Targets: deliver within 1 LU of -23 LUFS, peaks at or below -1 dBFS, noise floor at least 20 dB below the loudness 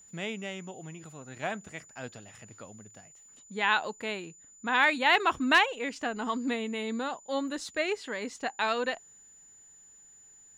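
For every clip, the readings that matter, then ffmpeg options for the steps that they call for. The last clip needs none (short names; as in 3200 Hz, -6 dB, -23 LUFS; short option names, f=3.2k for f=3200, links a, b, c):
steady tone 7000 Hz; tone level -53 dBFS; loudness -29.5 LUFS; peak -11.0 dBFS; loudness target -23.0 LUFS
-> -af "bandreject=f=7k:w=30"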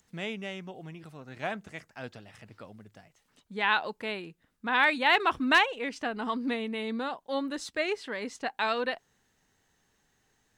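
steady tone none; loudness -29.5 LUFS; peak -11.0 dBFS; loudness target -23.0 LUFS
-> -af "volume=6.5dB"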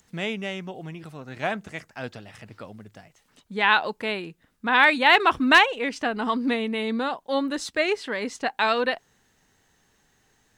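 loudness -23.0 LUFS; peak -4.5 dBFS; noise floor -66 dBFS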